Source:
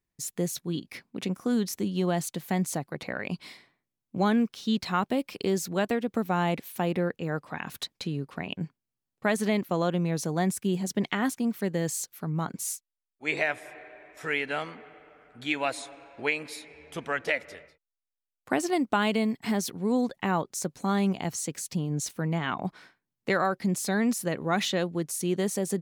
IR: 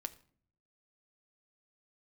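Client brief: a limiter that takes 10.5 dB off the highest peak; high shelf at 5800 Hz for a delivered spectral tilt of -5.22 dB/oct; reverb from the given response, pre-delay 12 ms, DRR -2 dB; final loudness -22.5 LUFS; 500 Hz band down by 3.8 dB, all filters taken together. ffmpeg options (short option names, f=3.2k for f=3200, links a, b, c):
-filter_complex "[0:a]equalizer=f=500:t=o:g=-5,highshelf=f=5.8k:g=-6,alimiter=limit=-23dB:level=0:latency=1,asplit=2[a][b];[1:a]atrim=start_sample=2205,adelay=12[c];[b][c]afir=irnorm=-1:irlink=0,volume=4.5dB[d];[a][d]amix=inputs=2:normalize=0,volume=6.5dB"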